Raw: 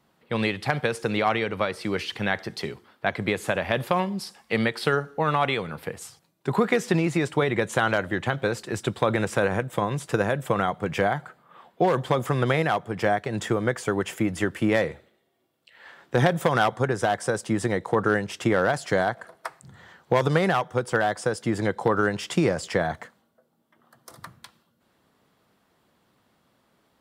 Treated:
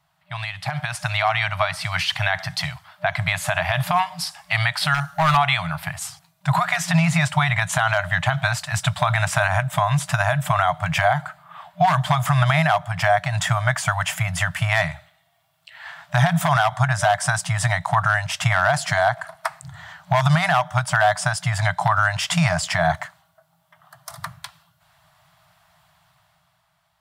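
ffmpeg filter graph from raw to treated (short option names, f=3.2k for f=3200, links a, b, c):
-filter_complex "[0:a]asettb=1/sr,asplit=3[a][b][c];[a]atrim=end=4.944[d];[b]atrim=start=4.94:end=5.37,asetpts=PTS-STARTPTS,afade=t=in:d=0.004:c=qsin,afade=t=out:st=0.426:d=0.004:c=qsin,highshelf=f=5.4k:g=8.5,asoftclip=type=hard:threshold=-21dB[e];[c]atrim=start=5.366[f];[d][e]acrossfade=d=0.004:c1=hsin:c2=qsin[g];[g][f]acrossfade=d=0.004:c1=qsin:c2=hsin,afftfilt=real='re*(1-between(b*sr/4096,180,600))':imag='im*(1-between(b*sr/4096,180,600))':win_size=4096:overlap=0.75,alimiter=limit=-17.5dB:level=0:latency=1:release=84,dynaudnorm=f=150:g=13:m=10dB"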